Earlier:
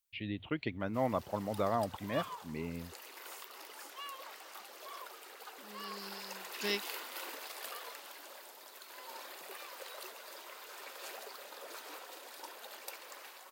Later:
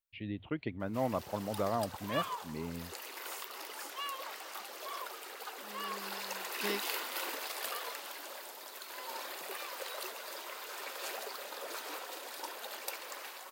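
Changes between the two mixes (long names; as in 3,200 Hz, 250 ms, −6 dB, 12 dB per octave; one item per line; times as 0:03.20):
speech: add high-shelf EQ 2,200 Hz −9 dB
background +5.5 dB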